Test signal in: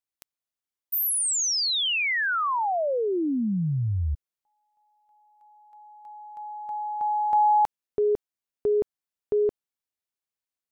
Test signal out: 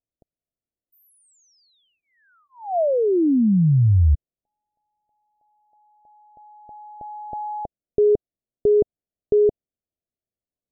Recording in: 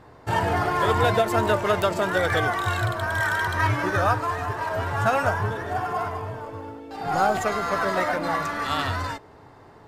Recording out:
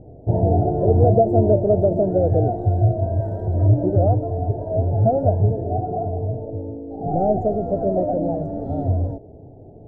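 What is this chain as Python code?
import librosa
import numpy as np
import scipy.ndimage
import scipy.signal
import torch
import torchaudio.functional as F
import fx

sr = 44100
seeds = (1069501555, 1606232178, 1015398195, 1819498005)

y = scipy.signal.sosfilt(scipy.signal.ellip(4, 1.0, 40, 690.0, 'lowpass', fs=sr, output='sos'), x)
y = fx.low_shelf(y, sr, hz=180.0, db=7.0)
y = F.gain(torch.from_numpy(y), 6.0).numpy()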